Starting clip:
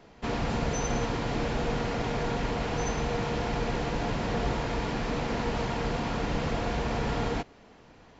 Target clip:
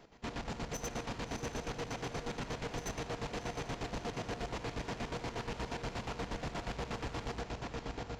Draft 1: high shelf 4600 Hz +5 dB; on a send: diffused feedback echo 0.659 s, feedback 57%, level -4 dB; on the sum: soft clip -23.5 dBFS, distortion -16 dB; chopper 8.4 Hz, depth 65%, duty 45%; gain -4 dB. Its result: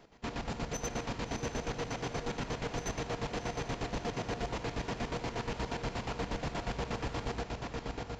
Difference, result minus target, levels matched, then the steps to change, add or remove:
soft clip: distortion -6 dB
change: soft clip -30 dBFS, distortion -9 dB

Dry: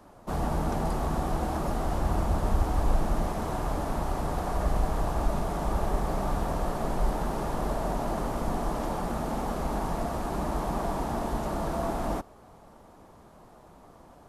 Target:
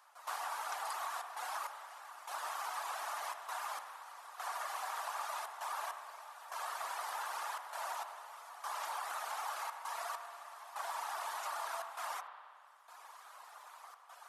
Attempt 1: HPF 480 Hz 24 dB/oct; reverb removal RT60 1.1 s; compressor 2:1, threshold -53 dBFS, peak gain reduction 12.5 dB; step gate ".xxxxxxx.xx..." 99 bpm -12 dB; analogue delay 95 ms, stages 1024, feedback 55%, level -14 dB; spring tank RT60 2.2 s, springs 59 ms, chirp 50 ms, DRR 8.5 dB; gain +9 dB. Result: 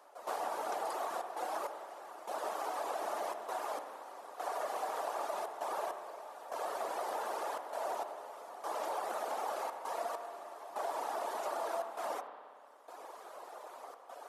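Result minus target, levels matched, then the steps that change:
500 Hz band +10.0 dB
change: HPF 1000 Hz 24 dB/oct

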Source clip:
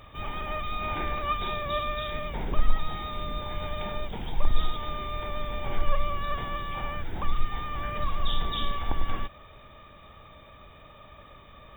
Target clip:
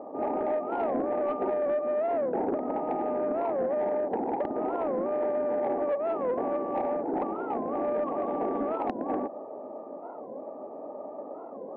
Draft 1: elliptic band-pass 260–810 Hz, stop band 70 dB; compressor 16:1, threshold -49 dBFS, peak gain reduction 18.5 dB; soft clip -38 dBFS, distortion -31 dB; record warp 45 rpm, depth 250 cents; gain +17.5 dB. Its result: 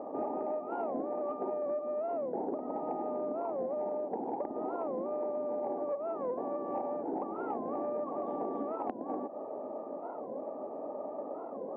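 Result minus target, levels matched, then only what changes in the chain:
compressor: peak gain reduction +8 dB
change: compressor 16:1, threshold -40.5 dBFS, peak gain reduction 10.5 dB

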